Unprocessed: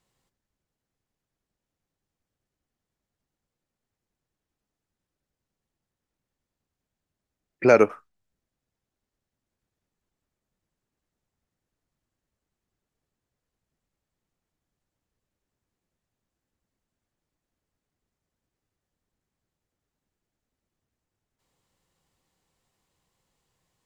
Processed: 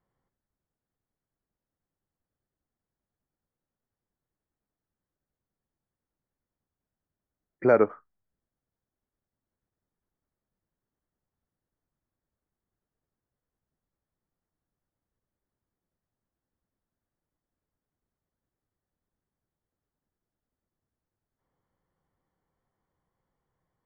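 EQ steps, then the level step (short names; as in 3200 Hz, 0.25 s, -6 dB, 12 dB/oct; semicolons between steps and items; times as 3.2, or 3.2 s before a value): polynomial smoothing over 41 samples; -3.5 dB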